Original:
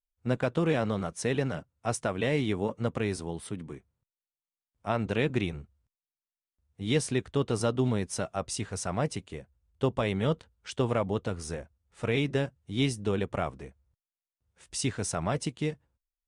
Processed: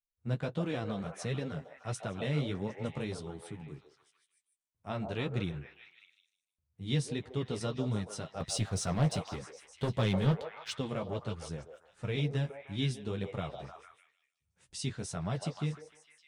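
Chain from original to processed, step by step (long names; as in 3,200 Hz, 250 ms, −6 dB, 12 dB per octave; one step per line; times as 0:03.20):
parametric band 140 Hz +9.5 dB 0.98 octaves
0:08.40–0:10.75: leveller curve on the samples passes 2
flanger 1.5 Hz, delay 9 ms, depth 5.5 ms, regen −20%
echo through a band-pass that steps 152 ms, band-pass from 620 Hz, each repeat 0.7 octaves, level −3 dB
dynamic equaliser 3,900 Hz, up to +7 dB, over −55 dBFS, Q 1.6
level −6.5 dB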